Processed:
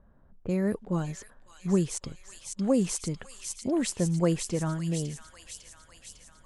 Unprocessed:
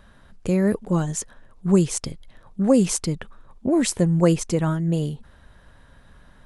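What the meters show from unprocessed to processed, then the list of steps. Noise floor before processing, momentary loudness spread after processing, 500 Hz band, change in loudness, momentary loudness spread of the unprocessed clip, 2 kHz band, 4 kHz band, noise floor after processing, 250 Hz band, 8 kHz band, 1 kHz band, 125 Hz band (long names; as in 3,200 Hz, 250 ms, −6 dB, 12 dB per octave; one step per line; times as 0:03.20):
−52 dBFS, 18 LU, −7.5 dB, −7.5 dB, 15 LU, −6.5 dB, −6.0 dB, −57 dBFS, −7.5 dB, −6.0 dB, −7.5 dB, −7.5 dB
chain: low-pass that shuts in the quiet parts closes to 770 Hz, open at −17.5 dBFS
delay with a high-pass on its return 552 ms, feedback 65%, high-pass 2,400 Hz, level −3.5 dB
level −7.5 dB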